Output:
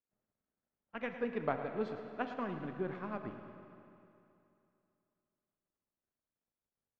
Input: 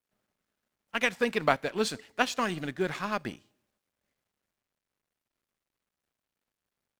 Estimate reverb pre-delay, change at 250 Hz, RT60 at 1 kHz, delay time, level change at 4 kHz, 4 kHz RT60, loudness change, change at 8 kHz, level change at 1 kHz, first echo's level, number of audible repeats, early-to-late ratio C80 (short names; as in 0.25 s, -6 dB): 32 ms, -6.5 dB, 2.8 s, 0.109 s, -22.5 dB, 2.5 s, -10.0 dB, under -35 dB, -10.0 dB, -12.5 dB, 1, 6.5 dB